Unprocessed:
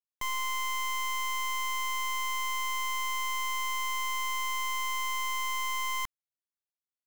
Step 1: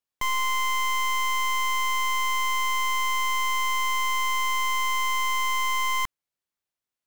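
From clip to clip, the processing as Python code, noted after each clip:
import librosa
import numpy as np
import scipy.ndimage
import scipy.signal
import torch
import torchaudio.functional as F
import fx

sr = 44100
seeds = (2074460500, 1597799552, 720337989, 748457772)

y = fx.high_shelf(x, sr, hz=4700.0, db=-4.5)
y = y * 10.0 ** (7.5 / 20.0)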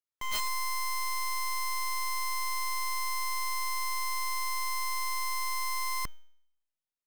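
y = fx.comb_fb(x, sr, f0_hz=310.0, decay_s=0.71, harmonics='all', damping=0.0, mix_pct=70)
y = (np.mod(10.0 ** (28.5 / 20.0) * y + 1.0, 2.0) - 1.0) / 10.0 ** (28.5 / 20.0)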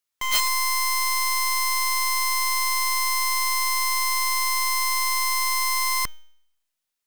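y = fx.tilt_shelf(x, sr, db=-4.0, hz=970.0)
y = y * 10.0 ** (8.0 / 20.0)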